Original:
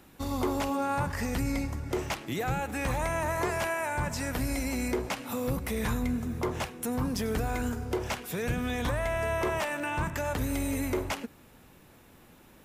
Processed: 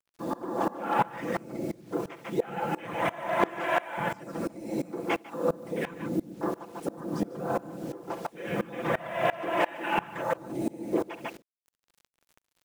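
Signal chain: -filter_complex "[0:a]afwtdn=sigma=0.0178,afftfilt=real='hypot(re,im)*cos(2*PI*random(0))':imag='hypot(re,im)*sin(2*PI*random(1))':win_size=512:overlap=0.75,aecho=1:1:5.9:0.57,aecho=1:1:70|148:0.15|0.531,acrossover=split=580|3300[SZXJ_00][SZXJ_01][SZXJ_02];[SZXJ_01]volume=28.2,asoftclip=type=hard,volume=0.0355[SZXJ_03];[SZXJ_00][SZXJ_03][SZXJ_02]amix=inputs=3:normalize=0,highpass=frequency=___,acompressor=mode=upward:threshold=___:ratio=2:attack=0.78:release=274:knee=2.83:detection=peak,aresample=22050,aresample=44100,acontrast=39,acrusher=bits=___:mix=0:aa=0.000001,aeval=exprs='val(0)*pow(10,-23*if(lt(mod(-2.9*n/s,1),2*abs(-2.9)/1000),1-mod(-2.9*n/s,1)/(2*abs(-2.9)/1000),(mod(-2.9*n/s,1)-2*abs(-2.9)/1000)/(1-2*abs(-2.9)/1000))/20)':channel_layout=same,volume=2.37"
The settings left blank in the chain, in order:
240, 0.00316, 8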